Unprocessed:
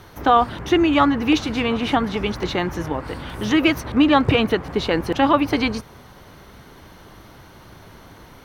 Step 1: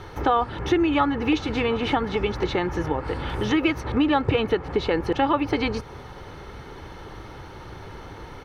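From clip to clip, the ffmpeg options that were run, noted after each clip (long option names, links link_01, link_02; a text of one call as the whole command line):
ffmpeg -i in.wav -af "aemphasis=mode=reproduction:type=50fm,aecho=1:1:2.3:0.4,acompressor=threshold=-29dB:ratio=2,volume=4dB" out.wav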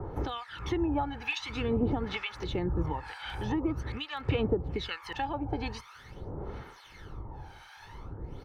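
ffmpeg -i in.wav -filter_complex "[0:a]aphaser=in_gain=1:out_gain=1:delay=1.3:decay=0.58:speed=0.46:type=sinusoidal,acrossover=split=150|2200[link_01][link_02][link_03];[link_02]alimiter=limit=-14.5dB:level=0:latency=1:release=362[link_04];[link_01][link_04][link_03]amix=inputs=3:normalize=0,acrossover=split=1000[link_05][link_06];[link_05]aeval=exprs='val(0)*(1-1/2+1/2*cos(2*PI*1.1*n/s))':channel_layout=same[link_07];[link_06]aeval=exprs='val(0)*(1-1/2-1/2*cos(2*PI*1.1*n/s))':channel_layout=same[link_08];[link_07][link_08]amix=inputs=2:normalize=0,volume=-4dB" out.wav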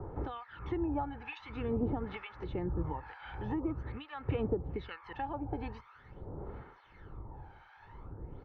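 ffmpeg -i in.wav -af "lowpass=1800,volume=-4.5dB" out.wav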